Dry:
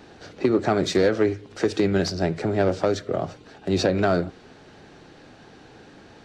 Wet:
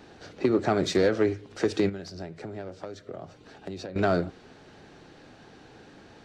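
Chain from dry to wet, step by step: 1.89–3.96 s: compression 6:1, threshold -33 dBFS, peak gain reduction 16 dB; trim -3 dB

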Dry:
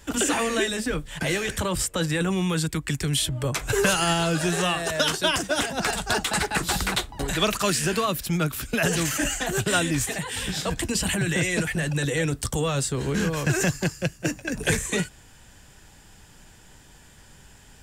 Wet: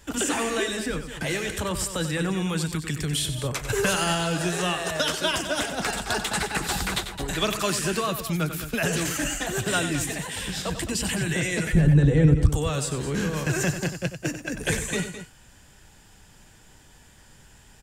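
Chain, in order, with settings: 11.73–12.49 s: tilt EQ -4.5 dB/octave; on a send: loudspeakers at several distances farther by 32 m -10 dB, 73 m -12 dB; on the sum: trim -2.5 dB

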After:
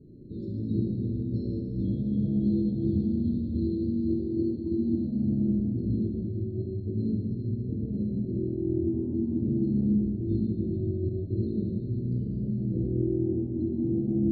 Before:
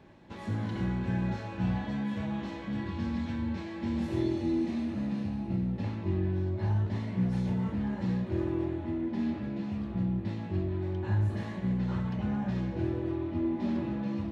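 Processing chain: elliptic band-stop 380–4300 Hz, stop band 60 dB; treble shelf 3.1 kHz -11.5 dB; compressor with a negative ratio -35 dBFS, ratio -0.5; loudest bins only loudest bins 32; thinning echo 433 ms, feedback 75%, level -18 dB; plate-style reverb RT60 2.9 s, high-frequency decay 1×, DRR -4.5 dB; trim +2 dB

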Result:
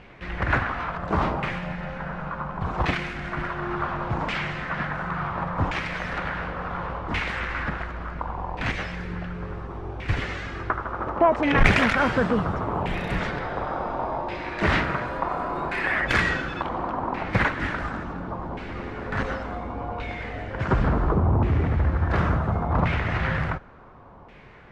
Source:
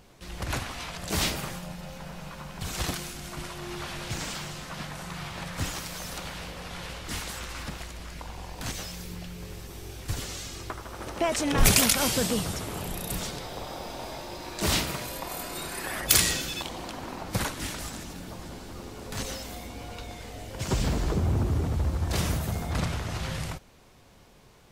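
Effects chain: in parallel at -3 dB: gain riding within 3 dB 0.5 s; on the sum: one-sided clip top -15.5 dBFS; LFO low-pass saw down 0.7 Hz 990–2300 Hz; trim +1 dB

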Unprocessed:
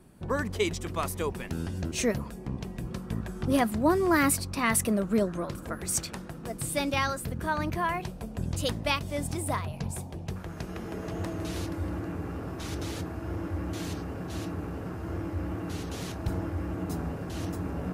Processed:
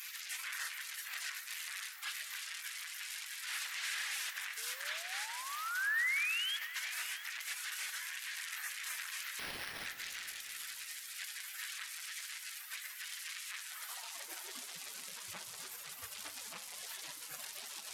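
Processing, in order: one-bit delta coder 64 kbps, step -24.5 dBFS; reverb removal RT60 0.63 s; spectral gate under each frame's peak -30 dB weak; treble shelf 2.4 kHz -10 dB; peak limiter -45 dBFS, peak gain reduction 11.5 dB; flange 0.63 Hz, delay 9.5 ms, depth 3.5 ms, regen -80%; 4.57–6.57 s: painted sound rise 430–3400 Hz -58 dBFS; high-pass sweep 1.8 kHz -> 97 Hz, 13.64–14.93 s; 9.39–9.86 s: careless resampling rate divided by 6×, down none, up hold; two-band feedback delay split 1.3 kHz, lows 253 ms, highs 664 ms, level -15.5 dB; reverberation RT60 4.1 s, pre-delay 6 ms, DRR 10 dB; trim +17.5 dB

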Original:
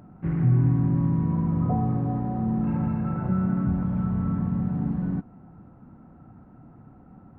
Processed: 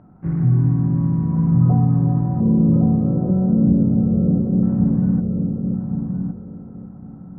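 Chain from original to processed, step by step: 2.40–4.63 s: FFT filter 140 Hz 0 dB, 530 Hz +13 dB, 900 Hz -15 dB; filtered feedback delay 1113 ms, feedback 33%, low-pass 940 Hz, level -3 dB; dynamic bell 160 Hz, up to +5 dB, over -30 dBFS, Q 0.97; low-pass 1.8 kHz 12 dB/octave

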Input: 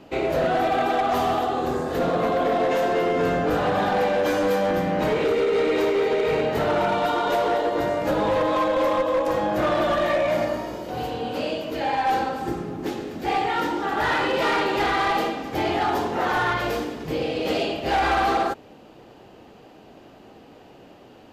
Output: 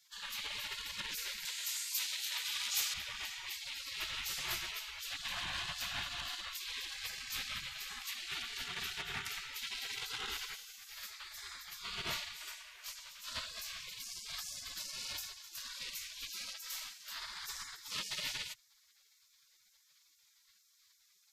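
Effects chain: spectral gate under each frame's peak -30 dB weak; 1.45–2.94 s: tone controls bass -15 dB, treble +11 dB; trim +1.5 dB

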